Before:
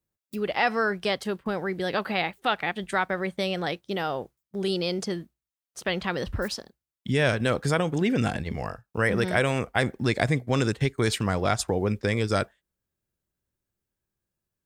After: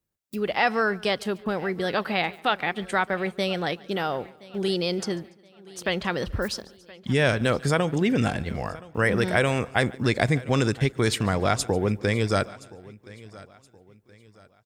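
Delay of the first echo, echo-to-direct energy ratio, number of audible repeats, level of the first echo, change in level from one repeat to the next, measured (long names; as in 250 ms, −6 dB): 144 ms, −18.0 dB, 4, −23.0 dB, repeats not evenly spaced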